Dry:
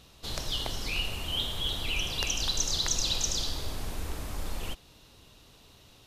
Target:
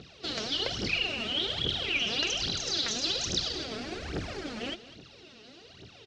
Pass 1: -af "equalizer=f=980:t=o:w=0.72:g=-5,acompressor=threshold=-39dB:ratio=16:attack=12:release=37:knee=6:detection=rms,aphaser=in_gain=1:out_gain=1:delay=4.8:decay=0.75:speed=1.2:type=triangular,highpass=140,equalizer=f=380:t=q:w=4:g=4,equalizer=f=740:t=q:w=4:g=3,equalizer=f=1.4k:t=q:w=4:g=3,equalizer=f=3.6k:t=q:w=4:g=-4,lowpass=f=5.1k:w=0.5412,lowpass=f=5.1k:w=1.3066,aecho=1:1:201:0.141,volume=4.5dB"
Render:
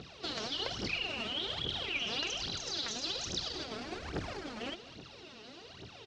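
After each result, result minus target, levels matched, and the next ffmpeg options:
compressor: peak gain reduction +7.5 dB; 1000 Hz band +4.5 dB
-af "equalizer=f=980:t=o:w=0.72:g=-5,acompressor=threshold=-31dB:ratio=16:attack=12:release=37:knee=6:detection=rms,aphaser=in_gain=1:out_gain=1:delay=4.8:decay=0.75:speed=1.2:type=triangular,highpass=140,equalizer=f=380:t=q:w=4:g=4,equalizer=f=740:t=q:w=4:g=3,equalizer=f=1.4k:t=q:w=4:g=3,equalizer=f=3.6k:t=q:w=4:g=-4,lowpass=f=5.1k:w=0.5412,lowpass=f=5.1k:w=1.3066,aecho=1:1:201:0.141,volume=4.5dB"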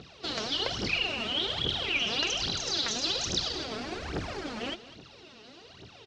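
1000 Hz band +3.5 dB
-af "equalizer=f=980:t=o:w=0.72:g=-12,acompressor=threshold=-31dB:ratio=16:attack=12:release=37:knee=6:detection=rms,aphaser=in_gain=1:out_gain=1:delay=4.8:decay=0.75:speed=1.2:type=triangular,highpass=140,equalizer=f=380:t=q:w=4:g=4,equalizer=f=740:t=q:w=4:g=3,equalizer=f=1.4k:t=q:w=4:g=3,equalizer=f=3.6k:t=q:w=4:g=-4,lowpass=f=5.1k:w=0.5412,lowpass=f=5.1k:w=1.3066,aecho=1:1:201:0.141,volume=4.5dB"

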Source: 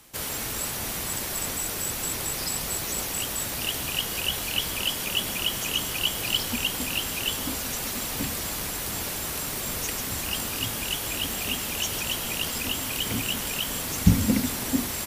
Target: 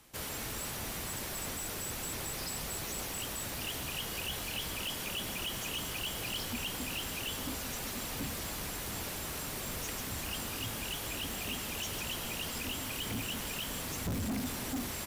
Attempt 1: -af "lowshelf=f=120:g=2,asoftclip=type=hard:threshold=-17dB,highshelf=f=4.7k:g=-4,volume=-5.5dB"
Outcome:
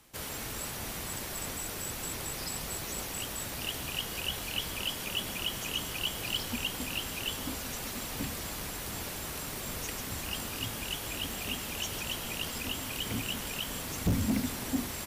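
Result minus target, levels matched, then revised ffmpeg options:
hard clip: distortion -6 dB
-af "lowshelf=f=120:g=2,asoftclip=type=hard:threshold=-26.5dB,highshelf=f=4.7k:g=-4,volume=-5.5dB"

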